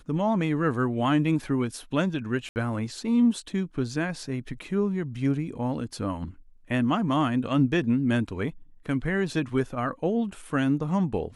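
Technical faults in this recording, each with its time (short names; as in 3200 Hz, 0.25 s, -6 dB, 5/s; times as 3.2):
2.49–2.56 gap 69 ms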